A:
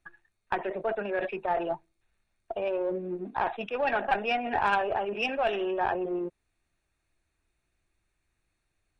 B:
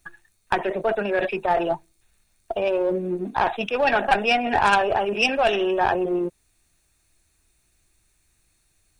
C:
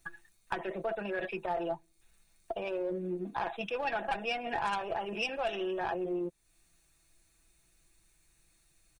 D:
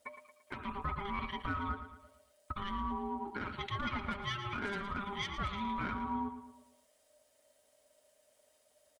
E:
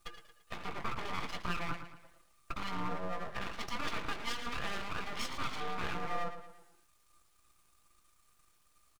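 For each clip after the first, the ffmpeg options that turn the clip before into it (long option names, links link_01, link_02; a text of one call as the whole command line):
ffmpeg -i in.wav -af "bass=frequency=250:gain=3,treble=frequency=4000:gain=14,volume=7dB" out.wav
ffmpeg -i in.wav -af "aecho=1:1:6:0.49,acompressor=threshold=-36dB:ratio=2,volume=-3.5dB" out.wav
ffmpeg -i in.wav -filter_complex "[0:a]alimiter=limit=-23dB:level=0:latency=1:release=156,aeval=exprs='val(0)*sin(2*PI*600*n/s)':channel_layout=same,asplit=2[link_01][link_02];[link_02]aecho=0:1:113|226|339|452|565:0.299|0.134|0.0605|0.0272|0.0122[link_03];[link_01][link_03]amix=inputs=2:normalize=0" out.wav
ffmpeg -i in.wav -filter_complex "[0:a]asplit=2[link_01][link_02];[link_02]adelay=17,volume=-9dB[link_03];[link_01][link_03]amix=inputs=2:normalize=0,aeval=exprs='abs(val(0))':channel_layout=same,volume=2dB" out.wav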